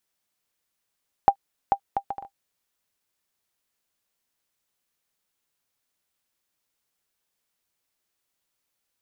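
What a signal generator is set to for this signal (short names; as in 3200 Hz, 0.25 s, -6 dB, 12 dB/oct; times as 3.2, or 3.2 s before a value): bouncing ball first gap 0.44 s, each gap 0.56, 795 Hz, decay 77 ms -4.5 dBFS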